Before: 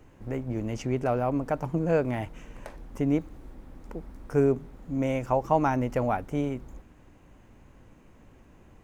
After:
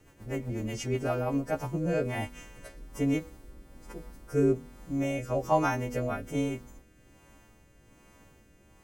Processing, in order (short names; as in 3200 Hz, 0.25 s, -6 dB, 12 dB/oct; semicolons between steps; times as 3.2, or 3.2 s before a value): frequency quantiser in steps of 2 st; rotary speaker horn 8 Hz, later 1.2 Hz, at 0.82; de-hum 244.6 Hz, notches 35